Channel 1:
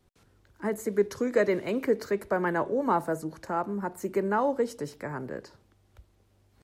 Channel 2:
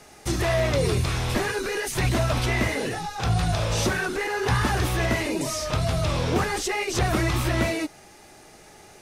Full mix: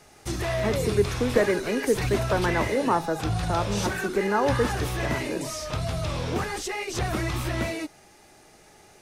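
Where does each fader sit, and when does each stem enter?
+2.0, -4.5 dB; 0.00, 0.00 s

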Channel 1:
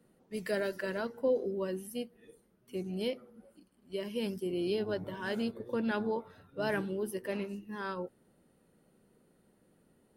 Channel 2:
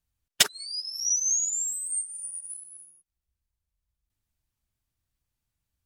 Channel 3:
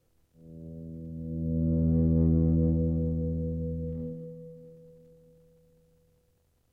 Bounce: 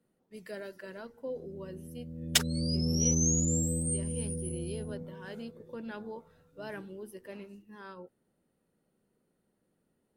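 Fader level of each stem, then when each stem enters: -9.0, -5.0, -5.5 dB; 0.00, 1.95, 0.90 s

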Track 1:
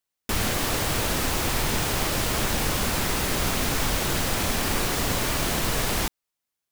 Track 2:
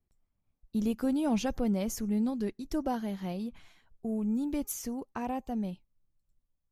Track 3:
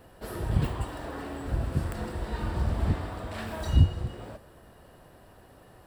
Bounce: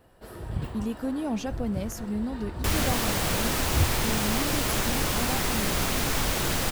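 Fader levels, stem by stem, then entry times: -1.5, -1.0, -5.5 dB; 2.35, 0.00, 0.00 s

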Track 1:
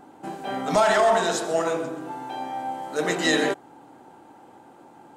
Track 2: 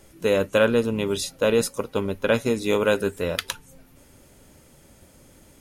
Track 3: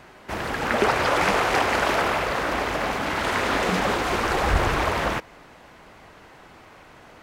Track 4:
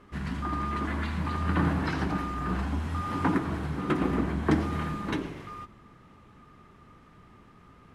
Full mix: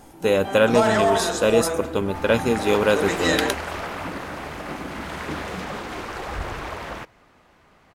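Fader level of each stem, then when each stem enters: -1.0, +1.5, -9.0, -9.0 dB; 0.00, 0.00, 1.85, 0.80 s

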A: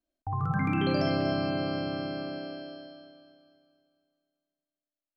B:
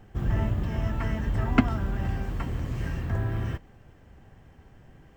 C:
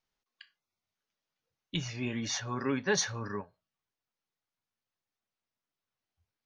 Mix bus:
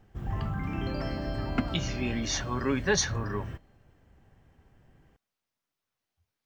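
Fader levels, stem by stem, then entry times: -8.5, -8.0, +3.0 dB; 0.00, 0.00, 0.00 s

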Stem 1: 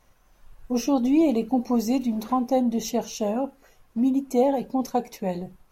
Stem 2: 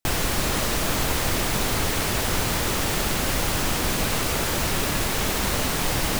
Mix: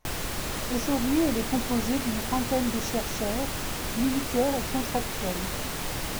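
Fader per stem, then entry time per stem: -5.0, -8.0 dB; 0.00, 0.00 s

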